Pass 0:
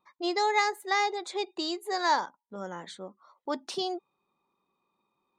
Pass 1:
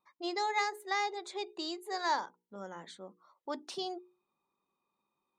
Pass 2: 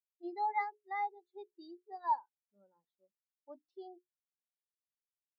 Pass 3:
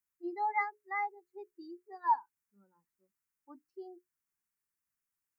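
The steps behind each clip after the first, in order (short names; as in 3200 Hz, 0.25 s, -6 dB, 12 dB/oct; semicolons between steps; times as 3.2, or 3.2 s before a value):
notches 60/120/180/240/300/360/420/480 Hz; gain -6 dB
spectral expander 2.5:1; gain -3 dB
fixed phaser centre 1500 Hz, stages 4; gain +8 dB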